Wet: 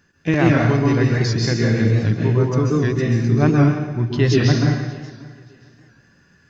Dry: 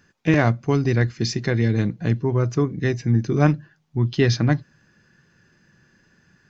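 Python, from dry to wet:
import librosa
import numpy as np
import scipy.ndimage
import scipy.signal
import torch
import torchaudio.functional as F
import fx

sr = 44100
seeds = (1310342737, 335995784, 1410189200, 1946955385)

p1 = x + fx.echo_feedback(x, sr, ms=582, feedback_pct=26, wet_db=-21.5, dry=0)
p2 = fx.rev_plate(p1, sr, seeds[0], rt60_s=1.1, hf_ratio=1.0, predelay_ms=120, drr_db=-2.5)
p3 = fx.record_warp(p2, sr, rpm=78.0, depth_cents=100.0)
y = p3 * librosa.db_to_amplitude(-1.0)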